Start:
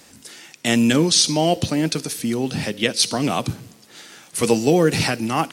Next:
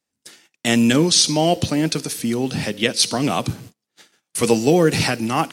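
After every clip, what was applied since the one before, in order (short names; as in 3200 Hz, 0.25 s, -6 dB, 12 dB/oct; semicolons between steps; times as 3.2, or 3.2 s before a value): gate -39 dBFS, range -34 dB; gain +1 dB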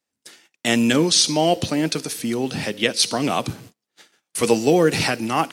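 tone controls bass -5 dB, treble -2 dB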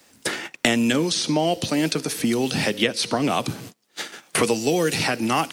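three-band squash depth 100%; gain -2.5 dB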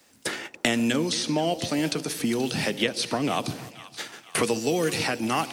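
split-band echo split 930 Hz, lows 0.146 s, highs 0.48 s, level -15 dB; gain -4 dB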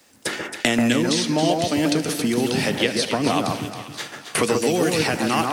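echo with dull and thin repeats by turns 0.136 s, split 1700 Hz, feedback 53%, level -2.5 dB; gain +3.5 dB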